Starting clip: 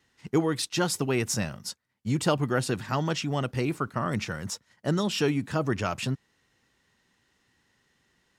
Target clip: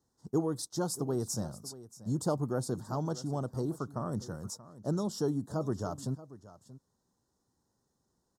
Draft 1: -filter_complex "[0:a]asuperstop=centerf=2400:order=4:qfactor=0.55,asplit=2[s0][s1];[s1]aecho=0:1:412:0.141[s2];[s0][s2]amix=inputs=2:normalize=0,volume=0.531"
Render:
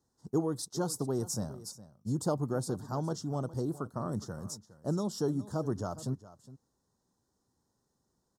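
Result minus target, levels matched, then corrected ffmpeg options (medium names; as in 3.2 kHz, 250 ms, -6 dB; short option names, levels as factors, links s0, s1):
echo 219 ms early
-filter_complex "[0:a]asuperstop=centerf=2400:order=4:qfactor=0.55,asplit=2[s0][s1];[s1]aecho=0:1:631:0.141[s2];[s0][s2]amix=inputs=2:normalize=0,volume=0.531"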